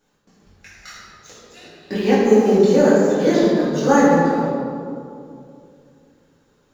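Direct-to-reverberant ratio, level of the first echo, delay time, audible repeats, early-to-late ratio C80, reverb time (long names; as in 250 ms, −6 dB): −11.5 dB, no echo audible, no echo audible, no echo audible, 0.0 dB, 2.6 s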